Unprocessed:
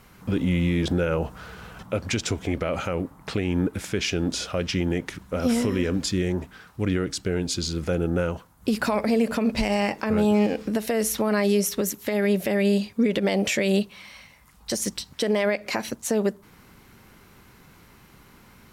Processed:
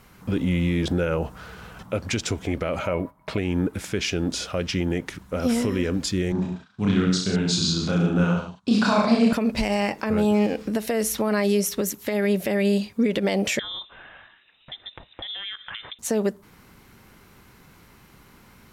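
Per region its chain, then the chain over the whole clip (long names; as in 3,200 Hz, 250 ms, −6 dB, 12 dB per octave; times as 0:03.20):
0:02.79–0:03.38: noise gate −43 dBFS, range −12 dB + parametric band 6,900 Hz −6 dB 1.3 octaves + hollow resonant body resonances 620/980/2,200 Hz, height 15 dB, ringing for 90 ms
0:06.32–0:09.33: noise gate −44 dBFS, range −17 dB + loudspeaker in its box 120–7,600 Hz, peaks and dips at 190 Hz +8 dB, 340 Hz −6 dB, 500 Hz −8 dB, 1,100 Hz +4 dB, 2,000 Hz −6 dB, 3,800 Hz +7 dB + reverse bouncing-ball delay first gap 30 ms, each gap 1.1×, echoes 5, each echo −2 dB
0:13.59–0:15.99: high-pass filter 280 Hz 6 dB per octave + downward compressor 5 to 1, threshold −31 dBFS + voice inversion scrambler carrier 3,800 Hz
whole clip: no processing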